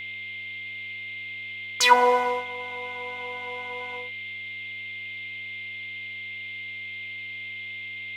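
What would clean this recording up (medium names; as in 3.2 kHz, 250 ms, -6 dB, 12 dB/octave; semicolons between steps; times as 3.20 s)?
de-hum 99.5 Hz, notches 33; band-stop 2.1 kHz, Q 30; noise print and reduce 30 dB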